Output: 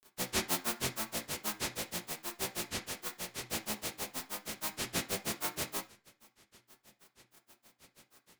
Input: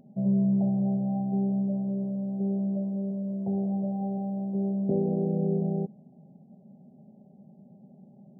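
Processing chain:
compressing power law on the bin magnitudes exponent 0.12
flanger 1.4 Hz, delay 7.7 ms, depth 6.3 ms, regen +51%
granular cloud 111 ms, grains 6.3 per second, spray 17 ms, pitch spread up and down by 12 semitones
on a send: convolution reverb RT60 0.30 s, pre-delay 3 ms, DRR 4 dB

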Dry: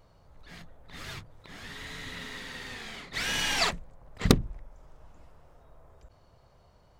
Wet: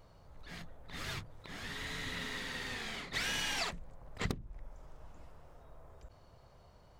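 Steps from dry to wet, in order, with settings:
downward compressor 20 to 1, threshold −32 dBFS, peak gain reduction 20.5 dB

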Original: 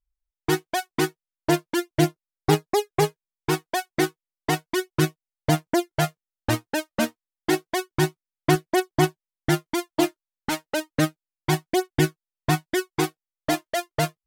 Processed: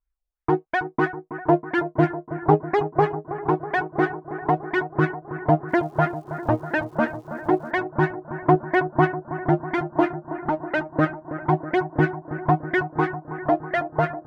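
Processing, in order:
auto-filter low-pass sine 3 Hz 540–1,900 Hz
bucket-brigade delay 323 ms, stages 4,096, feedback 75%, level −12.5 dB
0:05.68–0:07.70: surface crackle 520 per second −49 dBFS

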